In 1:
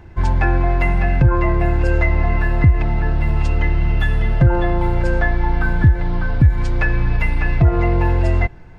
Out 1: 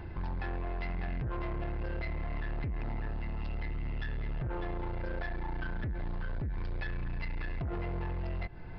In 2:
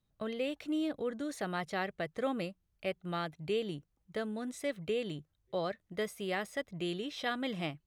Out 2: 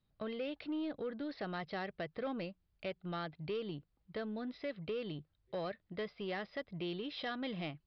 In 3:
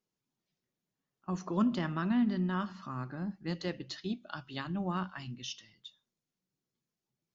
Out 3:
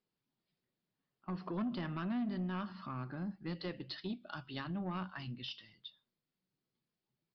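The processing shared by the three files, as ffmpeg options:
ffmpeg -i in.wav -af "alimiter=limit=-15dB:level=0:latency=1:release=145,acompressor=threshold=-39dB:ratio=1.5,aresample=11025,asoftclip=type=tanh:threshold=-31.5dB,aresample=44100" out.wav

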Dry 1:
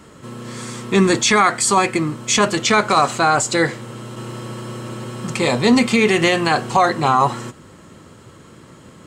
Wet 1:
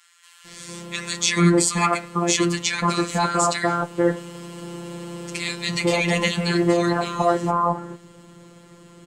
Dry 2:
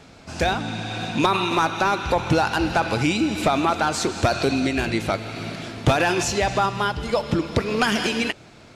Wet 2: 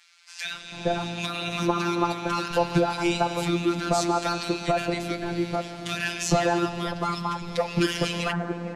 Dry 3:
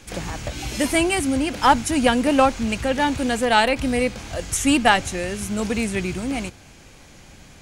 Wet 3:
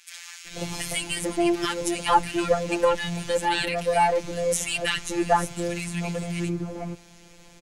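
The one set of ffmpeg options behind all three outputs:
ffmpeg -i in.wav -filter_complex "[0:a]afftfilt=real='hypot(re,im)*cos(PI*b)':imag='0':win_size=1024:overlap=0.75,acrossover=split=1500[link_01][link_02];[link_01]adelay=450[link_03];[link_03][link_02]amix=inputs=2:normalize=0" out.wav

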